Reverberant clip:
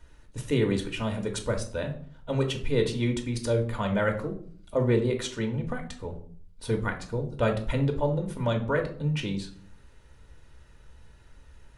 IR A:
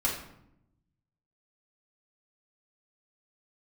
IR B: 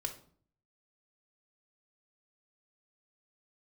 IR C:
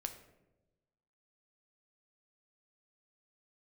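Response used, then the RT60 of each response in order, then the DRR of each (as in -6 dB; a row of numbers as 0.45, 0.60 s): B; 0.80, 0.50, 1.0 s; -5.0, 3.5, 6.0 dB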